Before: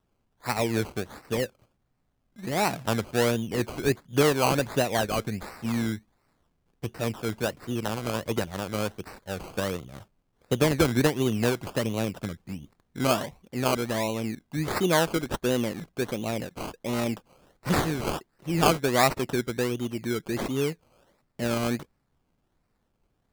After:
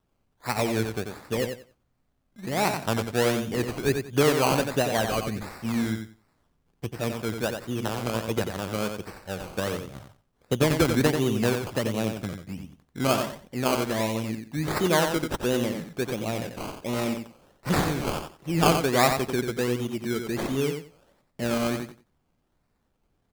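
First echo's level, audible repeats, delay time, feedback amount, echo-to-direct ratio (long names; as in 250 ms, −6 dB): −6.5 dB, 3, 90 ms, 20%, −6.5 dB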